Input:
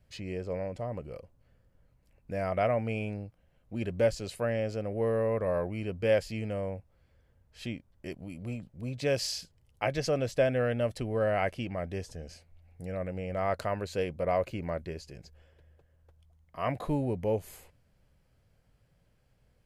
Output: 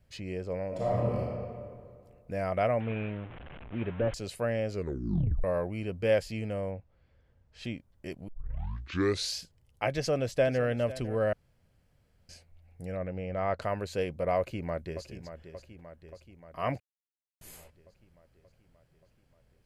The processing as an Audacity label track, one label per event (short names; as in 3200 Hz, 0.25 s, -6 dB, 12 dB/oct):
0.680000	1.190000	reverb throw, RT60 2.1 s, DRR -7.5 dB
2.800000	4.140000	delta modulation 16 kbps, step -39.5 dBFS
4.700000	4.700000	tape stop 0.74 s
6.710000	7.630000	LPF 3800 Hz -> 7000 Hz
8.280000	8.280000	tape start 1.09 s
9.940000	10.650000	echo throw 0.5 s, feedback 10%, level -16 dB
11.330000	12.290000	room tone
12.960000	13.620000	air absorption 110 m
14.380000	15.040000	echo throw 0.58 s, feedback 65%, level -11 dB
16.800000	17.410000	mute